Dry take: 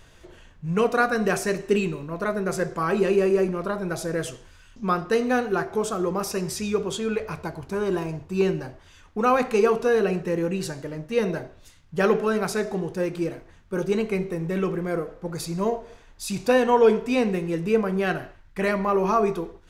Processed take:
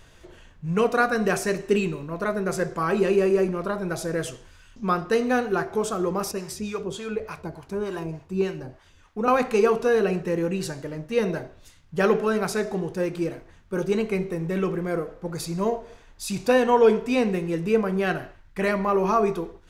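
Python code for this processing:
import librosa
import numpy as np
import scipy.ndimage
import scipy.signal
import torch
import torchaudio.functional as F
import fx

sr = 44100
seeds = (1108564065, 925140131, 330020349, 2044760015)

y = fx.harmonic_tremolo(x, sr, hz=3.4, depth_pct=70, crossover_hz=640.0, at=(6.31, 9.28))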